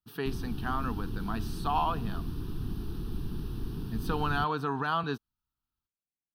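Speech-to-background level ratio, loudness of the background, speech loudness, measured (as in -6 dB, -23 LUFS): 5.5 dB, -38.5 LUFS, -33.0 LUFS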